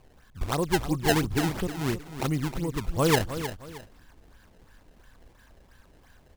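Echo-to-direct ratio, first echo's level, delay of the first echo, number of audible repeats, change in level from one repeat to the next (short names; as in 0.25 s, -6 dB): -10.5 dB, -11.0 dB, 0.312 s, 2, -10.0 dB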